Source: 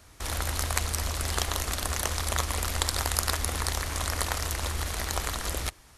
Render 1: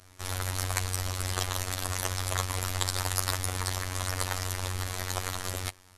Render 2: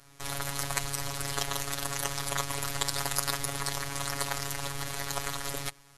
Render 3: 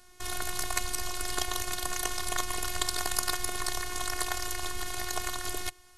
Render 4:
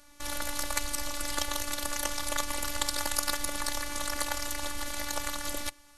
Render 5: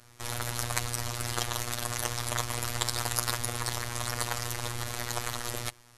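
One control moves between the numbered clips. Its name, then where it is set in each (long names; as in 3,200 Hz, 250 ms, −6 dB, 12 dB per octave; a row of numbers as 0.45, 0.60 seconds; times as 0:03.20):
phases set to zero, frequency: 92, 140, 360, 290, 120 Hertz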